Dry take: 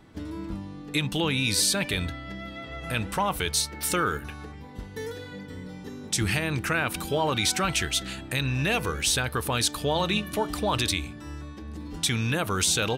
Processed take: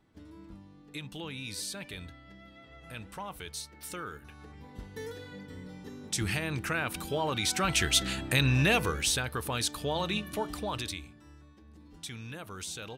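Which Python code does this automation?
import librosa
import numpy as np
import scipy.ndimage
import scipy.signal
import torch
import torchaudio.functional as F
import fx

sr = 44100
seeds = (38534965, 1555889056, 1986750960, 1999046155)

y = fx.gain(x, sr, db=fx.line((4.18, -14.5), (4.64, -5.5), (7.44, -5.5), (7.97, 2.0), (8.57, 2.0), (9.28, -6.0), (10.45, -6.0), (11.35, -16.0)))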